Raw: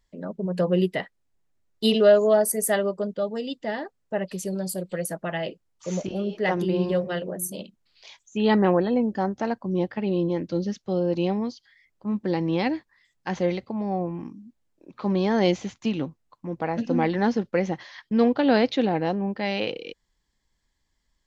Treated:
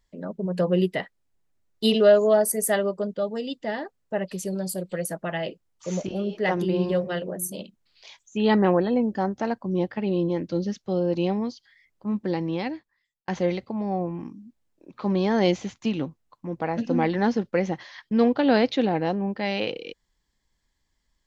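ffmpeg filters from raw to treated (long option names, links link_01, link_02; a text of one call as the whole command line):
ffmpeg -i in.wav -filter_complex "[0:a]asplit=2[link_01][link_02];[link_01]atrim=end=13.28,asetpts=PTS-STARTPTS,afade=type=out:start_time=12.17:duration=1.11[link_03];[link_02]atrim=start=13.28,asetpts=PTS-STARTPTS,afade=type=in:duration=0.004:curve=hsin[link_04];[link_03][link_04]concat=n=2:v=0:a=1" out.wav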